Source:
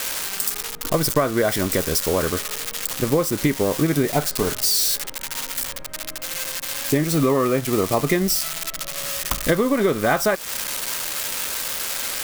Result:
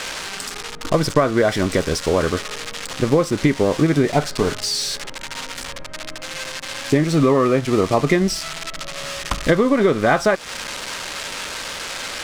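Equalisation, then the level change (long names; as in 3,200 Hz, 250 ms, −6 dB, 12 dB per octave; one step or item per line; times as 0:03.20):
high-frequency loss of the air 88 metres
+3.5 dB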